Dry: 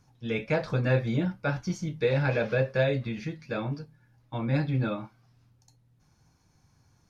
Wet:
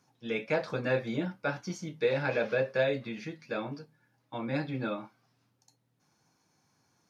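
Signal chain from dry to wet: HPF 230 Hz 12 dB/oct; gain -1.5 dB

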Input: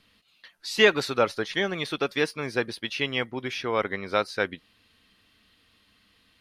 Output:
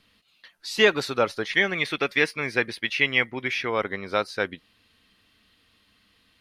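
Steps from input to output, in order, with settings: 1.45–3.7 bell 2100 Hz +10.5 dB 0.67 oct

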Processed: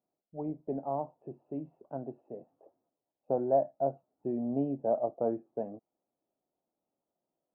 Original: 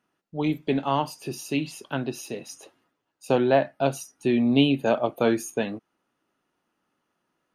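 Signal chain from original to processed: ladder low-pass 770 Hz, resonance 55%; gain -3 dB

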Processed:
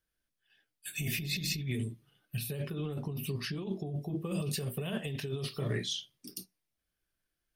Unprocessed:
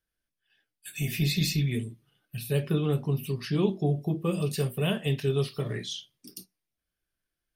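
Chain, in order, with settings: negative-ratio compressor -31 dBFS, ratio -1; gain -3.5 dB

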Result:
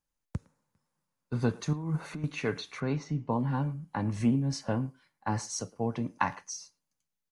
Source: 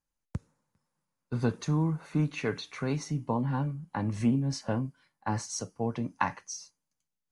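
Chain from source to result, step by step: 1.73–2.24 negative-ratio compressor -31 dBFS, ratio -0.5; 2.8–3.32 air absorption 140 m; speakerphone echo 0.11 s, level -21 dB

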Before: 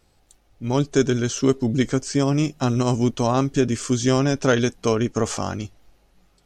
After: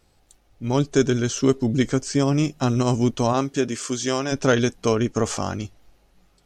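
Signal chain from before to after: 3.32–4.31 HPF 230 Hz -> 620 Hz 6 dB/oct

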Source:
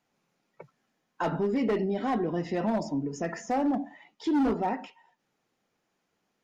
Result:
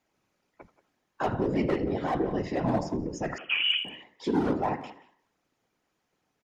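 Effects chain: de-hum 89.02 Hz, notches 3; whisperiser; frequency-shifting echo 82 ms, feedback 46%, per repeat +85 Hz, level -22 dB; on a send at -15 dB: reverb RT60 0.45 s, pre-delay 3 ms; 3.38–3.85 on the sum: inverted band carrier 3200 Hz; speakerphone echo 0.18 s, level -16 dB

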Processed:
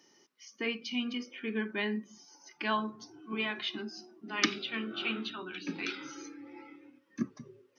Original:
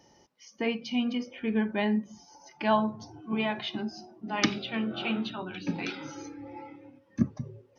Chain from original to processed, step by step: HPF 330 Hz 12 dB/oct; band shelf 680 Hz -11.5 dB 1.1 oct

